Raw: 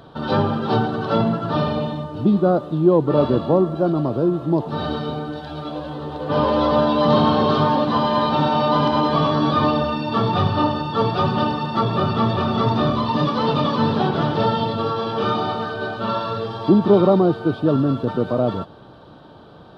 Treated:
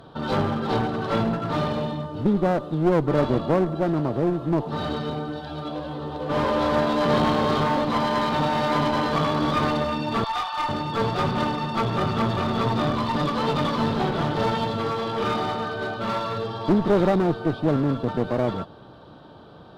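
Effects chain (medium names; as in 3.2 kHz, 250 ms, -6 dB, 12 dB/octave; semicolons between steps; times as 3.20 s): 10.24–10.69 s: steep high-pass 720 Hz 48 dB/octave; one-sided clip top -23 dBFS; trim -2 dB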